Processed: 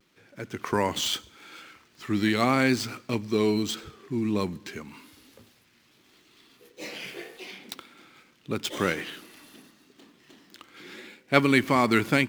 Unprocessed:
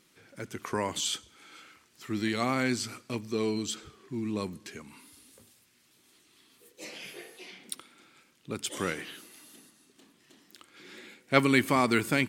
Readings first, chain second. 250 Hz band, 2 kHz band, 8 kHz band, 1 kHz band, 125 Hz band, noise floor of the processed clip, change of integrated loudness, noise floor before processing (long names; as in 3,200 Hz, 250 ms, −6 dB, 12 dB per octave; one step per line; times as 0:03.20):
+4.5 dB, +3.5 dB, −0.5 dB, +4.0 dB, +4.5 dB, −63 dBFS, +4.0 dB, −66 dBFS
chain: running median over 5 samples
pitch vibrato 0.82 Hz 45 cents
automatic gain control gain up to 6 dB